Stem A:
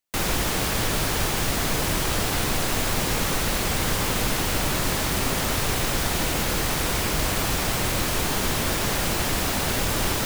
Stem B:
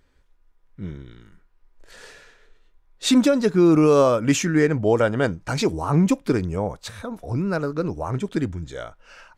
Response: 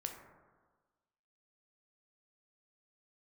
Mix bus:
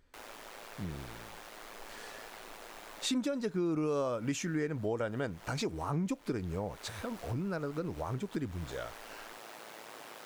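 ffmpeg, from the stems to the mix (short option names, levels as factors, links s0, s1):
-filter_complex "[0:a]aeval=exprs='val(0)*sin(2*PI*55*n/s)':c=same,highpass=480,highshelf=f=2800:g=-10,volume=0.168[s0];[1:a]volume=0.531,asplit=2[s1][s2];[s2]apad=whole_len=452201[s3];[s0][s3]sidechaincompress=threshold=0.0282:ratio=8:attack=38:release=276[s4];[s4][s1]amix=inputs=2:normalize=0,acompressor=threshold=0.0178:ratio=2.5"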